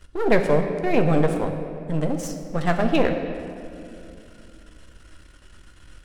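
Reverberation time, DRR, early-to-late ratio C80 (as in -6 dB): 2.6 s, 4.5 dB, 8.0 dB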